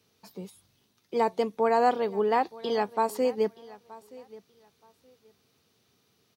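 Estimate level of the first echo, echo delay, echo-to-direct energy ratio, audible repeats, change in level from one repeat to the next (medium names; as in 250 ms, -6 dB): -20.5 dB, 924 ms, -20.5 dB, 2, -13.5 dB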